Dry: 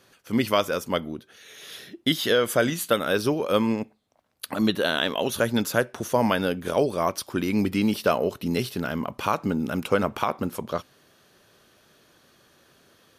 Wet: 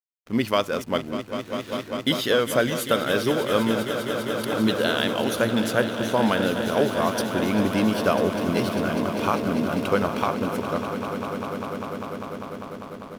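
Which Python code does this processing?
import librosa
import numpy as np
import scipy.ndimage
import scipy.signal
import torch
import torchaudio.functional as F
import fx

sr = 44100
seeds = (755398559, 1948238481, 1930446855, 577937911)

y = fx.echo_swell(x, sr, ms=199, loudest=5, wet_db=-11.5)
y = fx.backlash(y, sr, play_db=-35.0)
y = fx.resample_linear(y, sr, factor=2, at=(5.45, 6.43))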